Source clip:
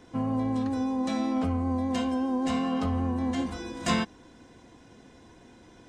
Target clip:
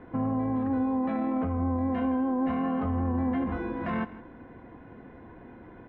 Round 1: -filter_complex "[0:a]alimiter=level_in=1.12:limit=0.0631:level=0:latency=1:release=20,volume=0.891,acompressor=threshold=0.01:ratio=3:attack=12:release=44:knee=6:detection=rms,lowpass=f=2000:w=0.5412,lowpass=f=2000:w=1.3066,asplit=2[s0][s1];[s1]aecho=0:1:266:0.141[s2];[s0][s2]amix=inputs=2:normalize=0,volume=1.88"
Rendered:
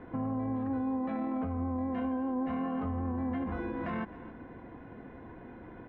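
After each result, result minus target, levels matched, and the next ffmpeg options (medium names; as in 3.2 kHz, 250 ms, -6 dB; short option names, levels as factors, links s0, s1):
echo 107 ms late; compression: peak gain reduction +5.5 dB
-filter_complex "[0:a]alimiter=level_in=1.12:limit=0.0631:level=0:latency=1:release=20,volume=0.891,acompressor=threshold=0.01:ratio=3:attack=12:release=44:knee=6:detection=rms,lowpass=f=2000:w=0.5412,lowpass=f=2000:w=1.3066,asplit=2[s0][s1];[s1]aecho=0:1:159:0.141[s2];[s0][s2]amix=inputs=2:normalize=0,volume=1.88"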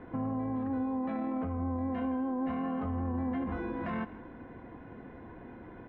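compression: peak gain reduction +5.5 dB
-filter_complex "[0:a]alimiter=level_in=1.12:limit=0.0631:level=0:latency=1:release=20,volume=0.891,acompressor=threshold=0.0282:ratio=3:attack=12:release=44:knee=6:detection=rms,lowpass=f=2000:w=0.5412,lowpass=f=2000:w=1.3066,asplit=2[s0][s1];[s1]aecho=0:1:159:0.141[s2];[s0][s2]amix=inputs=2:normalize=0,volume=1.88"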